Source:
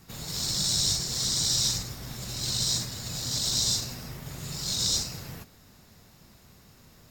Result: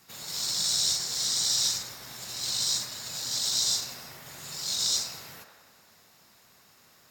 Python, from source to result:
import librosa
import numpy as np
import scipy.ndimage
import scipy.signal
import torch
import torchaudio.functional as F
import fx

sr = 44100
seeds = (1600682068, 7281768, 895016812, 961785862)

y = fx.highpass(x, sr, hz=140.0, slope=6)
y = fx.low_shelf(y, sr, hz=430.0, db=-12.0)
y = fx.echo_wet_bandpass(y, sr, ms=91, feedback_pct=66, hz=1000.0, wet_db=-5.0)